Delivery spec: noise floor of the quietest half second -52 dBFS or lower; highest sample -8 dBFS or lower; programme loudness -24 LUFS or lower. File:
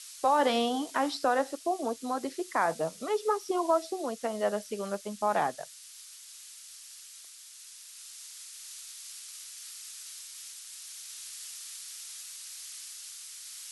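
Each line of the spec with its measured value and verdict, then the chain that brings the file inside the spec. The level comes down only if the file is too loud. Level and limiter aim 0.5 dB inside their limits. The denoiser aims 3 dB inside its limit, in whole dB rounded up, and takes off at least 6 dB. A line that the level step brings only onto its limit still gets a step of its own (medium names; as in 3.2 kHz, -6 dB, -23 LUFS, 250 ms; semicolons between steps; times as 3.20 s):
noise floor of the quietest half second -50 dBFS: fail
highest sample -13.0 dBFS: pass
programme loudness -33.0 LUFS: pass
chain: noise reduction 6 dB, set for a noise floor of -50 dBFS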